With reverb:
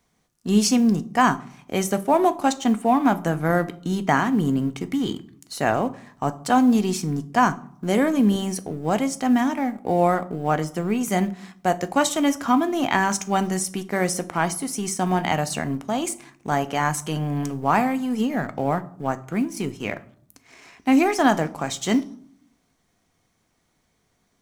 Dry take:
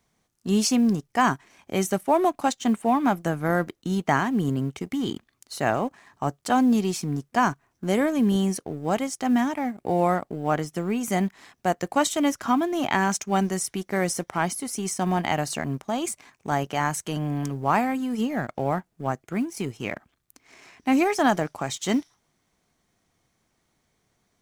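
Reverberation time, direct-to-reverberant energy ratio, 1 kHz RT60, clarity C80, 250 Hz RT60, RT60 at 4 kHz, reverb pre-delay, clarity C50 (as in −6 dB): 0.60 s, 11.0 dB, 0.60 s, 22.0 dB, 0.90 s, 0.35 s, 4 ms, 18.5 dB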